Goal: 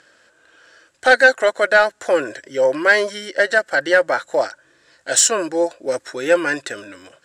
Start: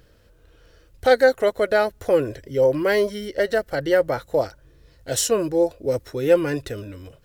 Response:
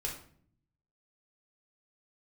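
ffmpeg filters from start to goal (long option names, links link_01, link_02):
-af "highpass=420,equalizer=frequency=450:width_type=q:width=4:gain=-9,equalizer=frequency=1600:width_type=q:width=4:gain=9,equalizer=frequency=7600:width_type=q:width=4:gain=8,lowpass=frequency=9200:width=0.5412,lowpass=frequency=9200:width=1.3066,acontrast=74"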